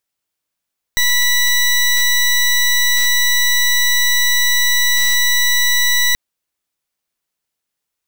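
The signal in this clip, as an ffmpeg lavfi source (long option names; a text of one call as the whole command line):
ffmpeg -f lavfi -i "aevalsrc='0.211*(2*lt(mod(1960*t,1),0.19)-1)':duration=5.18:sample_rate=44100" out.wav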